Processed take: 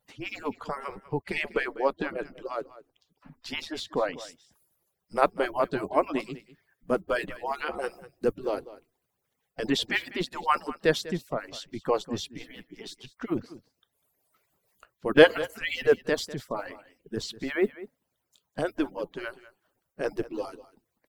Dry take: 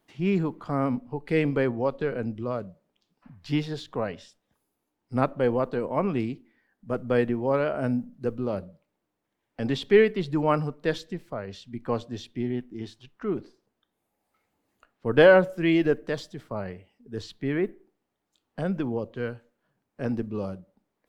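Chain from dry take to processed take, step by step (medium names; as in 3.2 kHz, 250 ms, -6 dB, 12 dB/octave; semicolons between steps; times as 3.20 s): harmonic-percussive separation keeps percussive; treble shelf 6.5 kHz +5.5 dB, from 4.14 s +11.5 dB; delay 197 ms -17 dB; trim +3.5 dB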